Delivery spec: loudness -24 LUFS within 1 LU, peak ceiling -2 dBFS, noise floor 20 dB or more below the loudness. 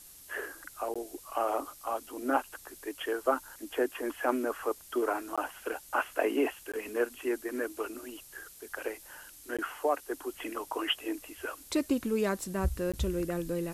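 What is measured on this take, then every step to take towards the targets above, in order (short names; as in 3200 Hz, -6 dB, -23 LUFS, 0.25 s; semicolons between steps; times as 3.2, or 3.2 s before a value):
dropouts 5; longest dropout 16 ms; noise floor -53 dBFS; noise floor target -54 dBFS; loudness -33.5 LUFS; peak -13.0 dBFS; loudness target -24.0 LUFS
-> interpolate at 0.94/5.36/6.72/9.57/12.92, 16 ms; noise print and reduce 6 dB; gain +9.5 dB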